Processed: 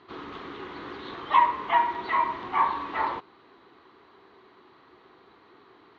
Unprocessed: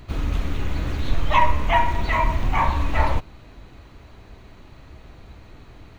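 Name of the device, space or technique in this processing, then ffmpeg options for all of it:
phone earpiece: -af "highpass=380,equalizer=frequency=380:width_type=q:width=4:gain=8,equalizer=frequency=600:width_type=q:width=4:gain=-10,equalizer=frequency=1100:width_type=q:width=4:gain=6,equalizer=frequency=2500:width_type=q:width=4:gain=-8,lowpass=frequency=4000:width=0.5412,lowpass=frequency=4000:width=1.3066,volume=-3.5dB"

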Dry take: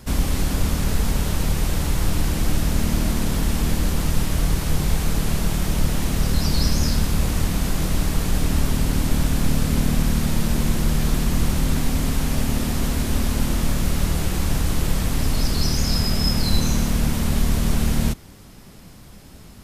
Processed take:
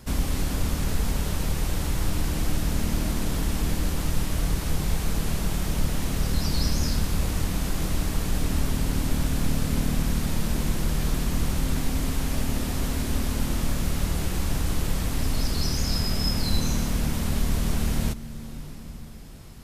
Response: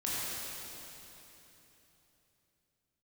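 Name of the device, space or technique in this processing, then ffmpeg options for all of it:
ducked reverb: -filter_complex "[0:a]asplit=3[link_01][link_02][link_03];[1:a]atrim=start_sample=2205[link_04];[link_02][link_04]afir=irnorm=-1:irlink=0[link_05];[link_03]apad=whole_len=865798[link_06];[link_05][link_06]sidechaincompress=threshold=-23dB:ratio=8:attack=8.5:release=635,volume=-12.5dB[link_07];[link_01][link_07]amix=inputs=2:normalize=0,volume=-5dB"

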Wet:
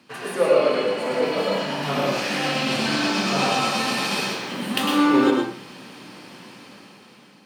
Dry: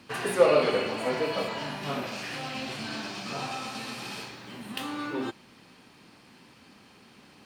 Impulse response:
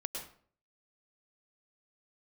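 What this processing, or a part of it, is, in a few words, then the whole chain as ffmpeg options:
far laptop microphone: -filter_complex "[1:a]atrim=start_sample=2205[link_01];[0:a][link_01]afir=irnorm=-1:irlink=0,highpass=frequency=120:width=0.5412,highpass=frequency=120:width=1.3066,dynaudnorm=framelen=350:gausssize=7:maxgain=13dB"

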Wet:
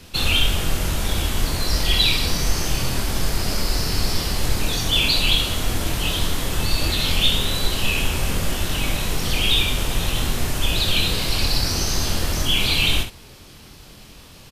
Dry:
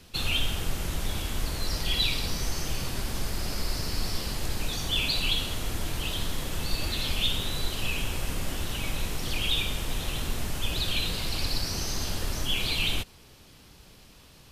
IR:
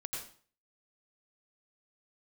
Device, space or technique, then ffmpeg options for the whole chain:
slapback doubling: -filter_complex "[0:a]asplit=3[link_01][link_02][link_03];[link_02]adelay=24,volume=-6dB[link_04];[link_03]adelay=67,volume=-9dB[link_05];[link_01][link_04][link_05]amix=inputs=3:normalize=0,volume=7.5dB"

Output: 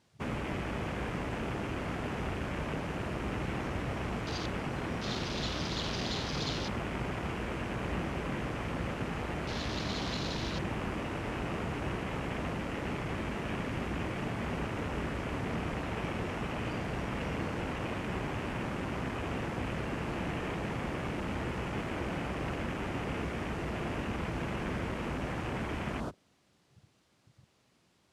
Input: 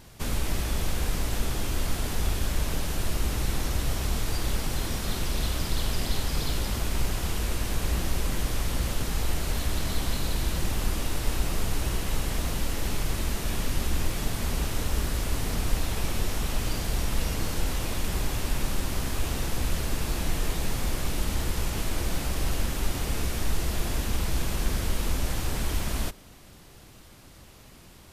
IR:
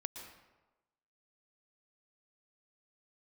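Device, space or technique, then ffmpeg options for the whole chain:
over-cleaned archive recording: -af "highpass=120,lowpass=7500,afwtdn=0.0112"

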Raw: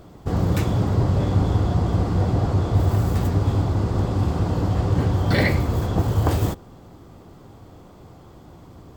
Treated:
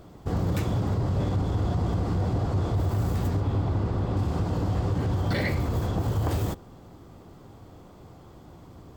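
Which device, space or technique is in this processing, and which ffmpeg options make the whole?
soft clipper into limiter: -filter_complex "[0:a]asoftclip=type=tanh:threshold=-9dB,alimiter=limit=-15.5dB:level=0:latency=1:release=71,asettb=1/sr,asplit=3[link_01][link_02][link_03];[link_01]atrim=end=3.404[link_04];[link_02]atrim=start=3.4:end=4.17,asetpts=PTS-STARTPTS,afade=type=in:duration=0.004:curve=qsin,afade=type=out:start_time=0.766:duration=0.004:curve=qsin,acrossover=split=4100[link_05][link_06];[link_06]acompressor=threshold=-59dB:ratio=4:attack=1:release=60[link_07];[link_05][link_07]amix=inputs=2:normalize=0[link_08];[link_03]atrim=start=4.166[link_09];[link_04][link_08]acrossfade=duration=0.004:curve1=hsin:curve2=qsin[link_10];[link_10][link_09]acrossfade=duration=0.004:curve1=qsin:curve2=hsin,volume=-3dB"

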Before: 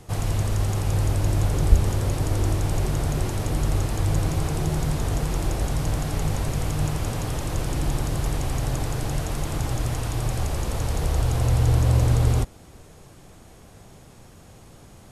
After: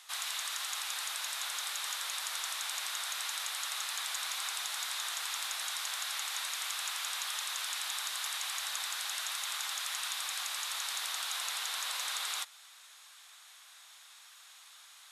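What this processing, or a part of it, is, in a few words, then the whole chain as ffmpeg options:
headphones lying on a table: -af "highpass=frequency=1200:width=0.5412,highpass=frequency=1200:width=1.3066,equalizer=frequency=3700:width_type=o:width=0.37:gain=9"

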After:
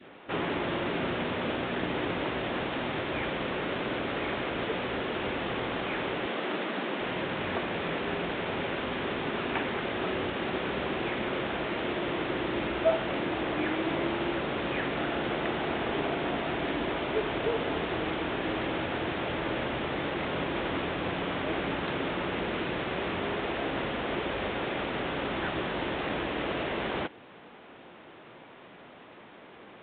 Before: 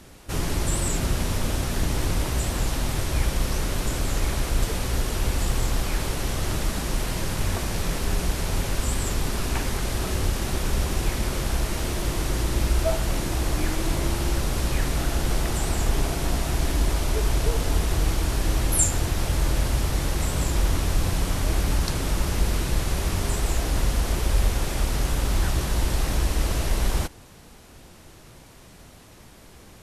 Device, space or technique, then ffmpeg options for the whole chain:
telephone: -filter_complex "[0:a]asettb=1/sr,asplit=3[link_01][link_02][link_03];[link_01]atrim=end=6.264[link_04];[link_02]atrim=start=6.26:end=7.01,asetpts=PTS-STARTPTS,afade=type=in:duration=0.004:curve=qsin,afade=type=out:start_time=0.746:duration=0.004:curve=qsin,highpass=frequency=180:width=0.5412,highpass=frequency=180:width=1.3066[link_05];[link_03]atrim=start=7.006[link_06];[link_04][link_05]acrossfade=duration=0.004:curve1=hsin:curve2=qsin[link_07];[link_07][link_06]acrossfade=duration=0.004:curve1=qsin:curve2=hsin,adynamicequalizer=threshold=0.00355:dfrequency=1000:dqfactor=1.2:tfrequency=1000:tqfactor=1.2:attack=5:release=100:ratio=0.375:range=1.5:mode=cutabove:tftype=bell,highpass=280,lowpass=3100,volume=3dB" -ar 8000 -c:a pcm_alaw

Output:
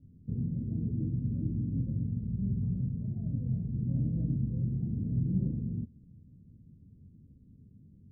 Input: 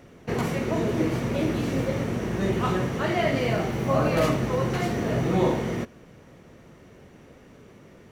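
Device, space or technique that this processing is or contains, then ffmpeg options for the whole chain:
the neighbour's flat through the wall: -filter_complex "[0:a]lowpass=frequency=230:width=0.5412,lowpass=frequency=230:width=1.3066,equalizer=frequency=91:width_type=o:width=0.7:gain=6,bandreject=frequency=360:width=12,asettb=1/sr,asplit=3[link_01][link_02][link_03];[link_01]atrim=end=2.084[link_04];[link_02]atrim=start=2.08:end=3.73,asetpts=PTS-STARTPTS,afade=type=in:duration=0.004:curve=qsin,afade=type=out:start_time=1.646:duration=0.004:curve=qsin,equalizer=frequency=320:width_type=o:width=0.41:gain=-10[link_05];[link_03]atrim=start=3.726[link_06];[link_04][link_05]acrossfade=duration=0.004:curve1=hsin:curve2=qsin[link_07];[link_07][link_06]acrossfade=duration=0.004:curve1=qsin:curve2=hsin,volume=-4dB"

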